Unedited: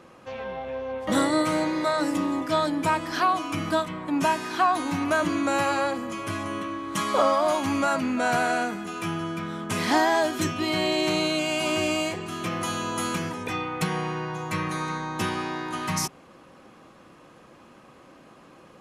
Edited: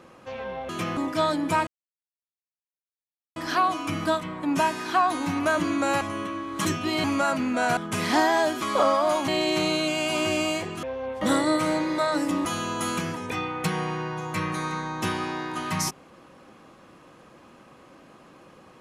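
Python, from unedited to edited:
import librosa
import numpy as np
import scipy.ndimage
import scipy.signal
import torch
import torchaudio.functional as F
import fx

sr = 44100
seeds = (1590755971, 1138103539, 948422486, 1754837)

y = fx.edit(x, sr, fx.swap(start_s=0.69, length_s=1.62, other_s=12.34, other_length_s=0.28),
    fx.insert_silence(at_s=3.01, length_s=1.69),
    fx.cut(start_s=5.66, length_s=0.71),
    fx.swap(start_s=7.01, length_s=0.66, other_s=10.4, other_length_s=0.39),
    fx.cut(start_s=8.4, length_s=1.15), tone=tone)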